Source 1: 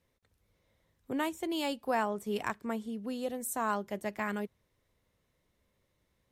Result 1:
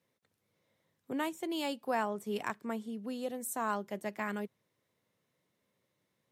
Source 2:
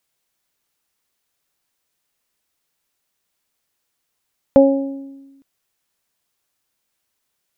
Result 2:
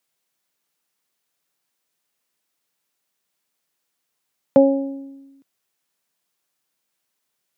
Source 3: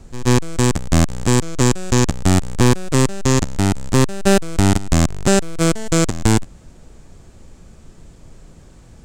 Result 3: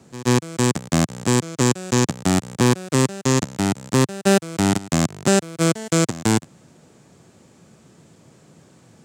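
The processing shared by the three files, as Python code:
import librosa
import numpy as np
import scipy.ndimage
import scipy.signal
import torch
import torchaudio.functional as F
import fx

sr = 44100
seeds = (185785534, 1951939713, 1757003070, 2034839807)

y = scipy.signal.sosfilt(scipy.signal.butter(4, 120.0, 'highpass', fs=sr, output='sos'), x)
y = F.gain(torch.from_numpy(y), -2.0).numpy()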